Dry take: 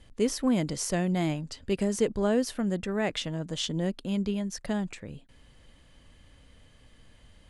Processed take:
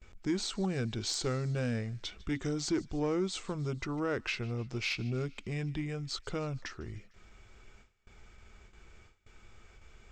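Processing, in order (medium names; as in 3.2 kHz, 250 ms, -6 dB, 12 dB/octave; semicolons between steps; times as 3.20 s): gate with hold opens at -46 dBFS; peaking EQ 220 Hz -13.5 dB 0.3 oct; band-stop 370 Hz, Q 12; in parallel at +2.5 dB: compression, threshold -34 dBFS, peak gain reduction 12 dB; on the sum: saturation -14.5 dBFS, distortion -25 dB; speed mistake 45 rpm record played at 33 rpm; feedback echo behind a high-pass 151 ms, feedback 62%, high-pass 1.6 kHz, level -21 dB; trim -6.5 dB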